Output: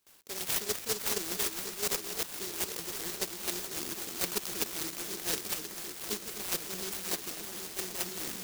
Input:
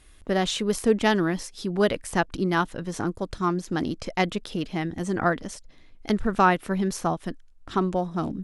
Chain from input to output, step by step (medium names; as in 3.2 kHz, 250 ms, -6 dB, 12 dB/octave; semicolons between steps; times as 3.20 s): bit-reversed sample order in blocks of 32 samples; gate with hold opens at -45 dBFS; tilt EQ +3 dB/octave; reverse; compression 16:1, threshold -23 dBFS, peak gain reduction 21.5 dB; reverse; cabinet simulation 260–9700 Hz, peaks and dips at 260 Hz -5 dB, 420 Hz +7 dB, 800 Hz +5 dB, 1.4 kHz -8 dB, 2 kHz -6 dB, 5.3 kHz +7 dB; echo whose repeats swap between lows and highs 257 ms, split 2.3 kHz, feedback 87%, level -5.5 dB; in parallel at +1 dB: level held to a coarse grid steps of 16 dB; on the sum: delay time shaken by noise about 5.5 kHz, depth 0.35 ms; trim -4.5 dB